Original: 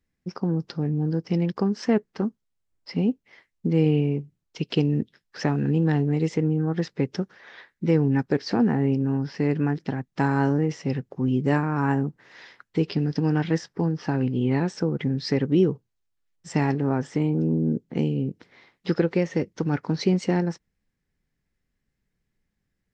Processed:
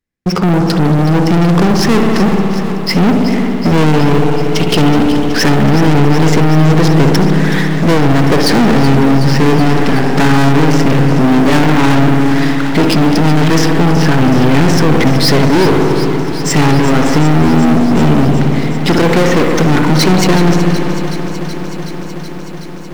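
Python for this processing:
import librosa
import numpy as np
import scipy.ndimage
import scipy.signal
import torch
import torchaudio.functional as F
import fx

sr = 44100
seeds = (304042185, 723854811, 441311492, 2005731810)

y = fx.low_shelf(x, sr, hz=130.0, db=-5.0)
y = np.clip(10.0 ** (23.0 / 20.0) * y, -1.0, 1.0) / 10.0 ** (23.0 / 20.0)
y = fx.rev_spring(y, sr, rt60_s=1.9, pass_ms=(58,), chirp_ms=20, drr_db=4.0)
y = fx.leveller(y, sr, passes=5)
y = fx.echo_crushed(y, sr, ms=374, feedback_pct=80, bits=8, wet_db=-12)
y = y * librosa.db_to_amplitude(7.5)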